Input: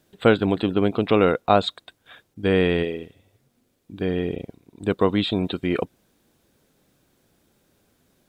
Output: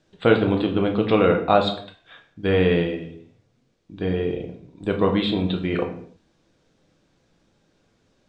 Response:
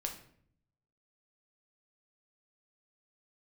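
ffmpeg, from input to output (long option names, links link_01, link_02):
-filter_complex "[0:a]lowpass=frequency=6700:width=0.5412,lowpass=frequency=6700:width=1.3066[link_01];[1:a]atrim=start_sample=2205,afade=type=out:start_time=0.38:duration=0.01,atrim=end_sample=17199[link_02];[link_01][link_02]afir=irnorm=-1:irlink=0"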